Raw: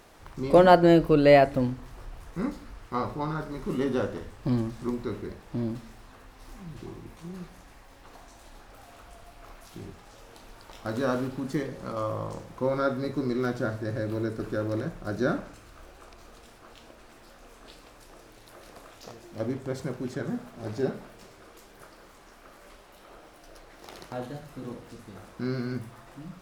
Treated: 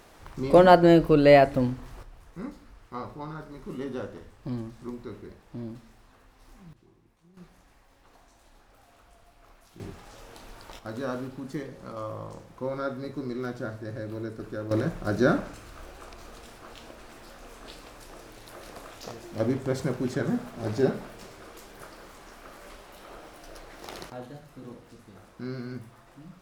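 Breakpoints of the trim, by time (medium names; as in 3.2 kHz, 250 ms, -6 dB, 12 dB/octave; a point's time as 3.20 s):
+1 dB
from 2.03 s -7 dB
from 6.73 s -19 dB
from 7.37 s -8 dB
from 9.80 s +2.5 dB
from 10.79 s -5 dB
from 14.71 s +4.5 dB
from 24.10 s -5 dB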